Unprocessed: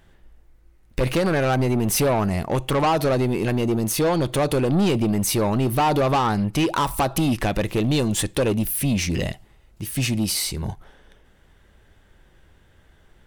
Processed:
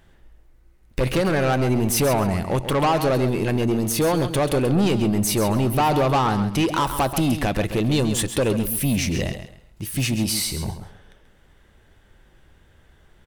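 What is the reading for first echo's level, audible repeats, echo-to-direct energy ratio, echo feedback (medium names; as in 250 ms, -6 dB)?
-10.0 dB, 3, -10.0 dB, 24%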